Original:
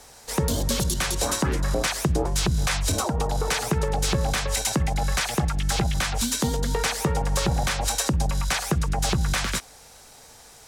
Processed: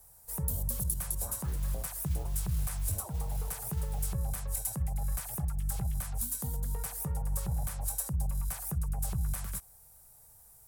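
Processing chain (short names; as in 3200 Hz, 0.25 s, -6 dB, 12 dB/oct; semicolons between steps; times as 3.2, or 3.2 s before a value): EQ curve 110 Hz 0 dB, 190 Hz -7 dB, 280 Hz -19 dB, 630 Hz -11 dB, 1000 Hz -11 dB, 2100 Hz -18 dB, 3600 Hz -20 dB, 6400 Hz -13 dB, 9100 Hz +1 dB, 15000 Hz +12 dB; 1.33–4.08 modulation noise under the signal 22 dB; gain -7 dB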